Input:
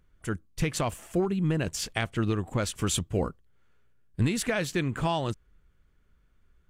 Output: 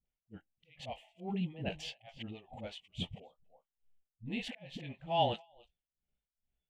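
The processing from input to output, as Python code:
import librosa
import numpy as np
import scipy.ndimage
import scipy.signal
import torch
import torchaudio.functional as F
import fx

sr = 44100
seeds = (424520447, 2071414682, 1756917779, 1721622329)

p1 = fx.chorus_voices(x, sr, voices=6, hz=0.46, base_ms=19, depth_ms=3.9, mix_pct=25)
p2 = fx.auto_swell(p1, sr, attack_ms=267.0)
p3 = fx.low_shelf(p2, sr, hz=390.0, db=-10.0)
p4 = p3 + fx.echo_single(p3, sr, ms=287, db=-21.0, dry=0)
p5 = p4 * (1.0 - 0.89 / 2.0 + 0.89 / 2.0 * np.cos(2.0 * np.pi * 2.3 * (np.arange(len(p4)) / sr)))
p6 = fx.dispersion(p5, sr, late='highs', ms=58.0, hz=390.0)
p7 = fx.noise_reduce_blind(p6, sr, reduce_db=17)
p8 = fx.curve_eq(p7, sr, hz=(100.0, 210.0, 340.0, 810.0, 1100.0, 3000.0, 5200.0, 10000.0), db=(0, 4, -5, 5, -18, 3, -18, -30))
y = F.gain(torch.from_numpy(p8), 5.0).numpy()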